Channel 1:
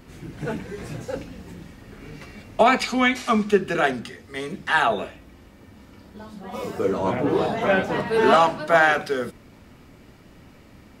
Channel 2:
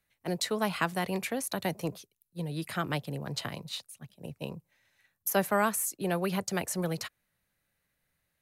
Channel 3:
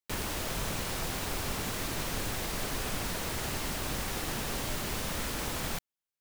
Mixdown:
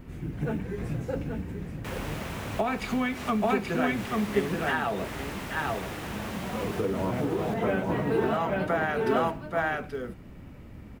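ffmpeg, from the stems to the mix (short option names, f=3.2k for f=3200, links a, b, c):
-filter_complex "[0:a]lowshelf=f=280:g=10,acrusher=bits=9:mode=log:mix=0:aa=0.000001,volume=-4dB,asplit=2[a][b];[b]volume=-8.5dB[c];[2:a]highpass=86,highshelf=f=8.3k:g=-10.5,adelay=1750,volume=0dB,asplit=2[d][e];[e]volume=-13dB[f];[a][d]amix=inputs=2:normalize=0,acompressor=threshold=-25dB:ratio=6,volume=0dB[g];[c][f]amix=inputs=2:normalize=0,aecho=0:1:830:1[h];[g][h]amix=inputs=2:normalize=0,firequalizer=gain_entry='entry(2400,0);entry(4400,-7);entry(14000,-1)':delay=0.05:min_phase=1"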